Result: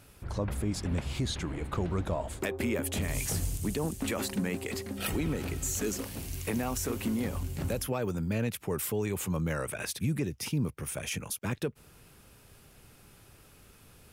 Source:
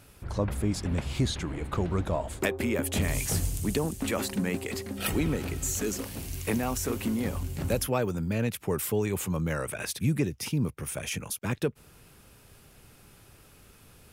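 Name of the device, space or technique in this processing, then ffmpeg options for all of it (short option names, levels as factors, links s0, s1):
clipper into limiter: -af "asoftclip=type=hard:threshold=0.168,alimiter=limit=0.1:level=0:latency=1:release=73,volume=0.841"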